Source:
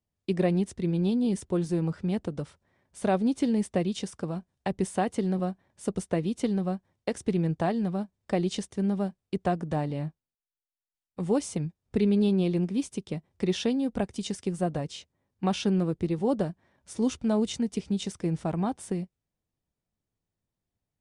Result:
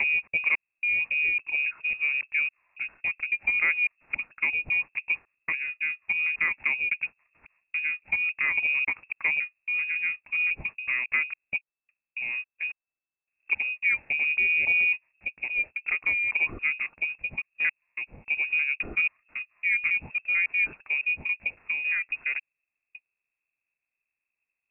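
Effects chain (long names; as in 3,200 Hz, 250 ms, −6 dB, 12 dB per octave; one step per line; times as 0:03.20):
slices reordered back to front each 235 ms, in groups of 3
voice inversion scrambler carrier 3,100 Hz
speed change −15%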